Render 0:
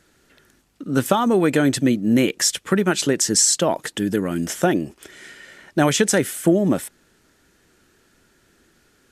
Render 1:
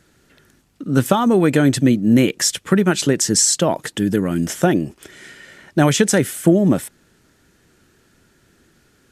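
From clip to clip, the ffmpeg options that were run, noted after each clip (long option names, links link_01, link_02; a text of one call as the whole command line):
ffmpeg -i in.wav -af "equalizer=frequency=120:width=0.74:gain=6,volume=1dB" out.wav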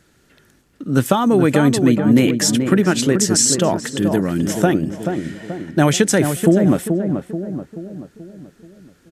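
ffmpeg -i in.wav -filter_complex "[0:a]asplit=2[link_01][link_02];[link_02]adelay=432,lowpass=frequency=1300:poles=1,volume=-6dB,asplit=2[link_03][link_04];[link_04]adelay=432,lowpass=frequency=1300:poles=1,volume=0.51,asplit=2[link_05][link_06];[link_06]adelay=432,lowpass=frequency=1300:poles=1,volume=0.51,asplit=2[link_07][link_08];[link_08]adelay=432,lowpass=frequency=1300:poles=1,volume=0.51,asplit=2[link_09][link_10];[link_10]adelay=432,lowpass=frequency=1300:poles=1,volume=0.51,asplit=2[link_11][link_12];[link_12]adelay=432,lowpass=frequency=1300:poles=1,volume=0.51[link_13];[link_01][link_03][link_05][link_07][link_09][link_11][link_13]amix=inputs=7:normalize=0" out.wav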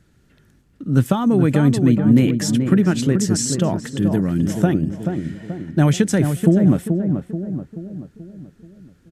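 ffmpeg -i in.wav -af "bass=frequency=250:gain=11,treble=frequency=4000:gain=-2,volume=-6.5dB" out.wav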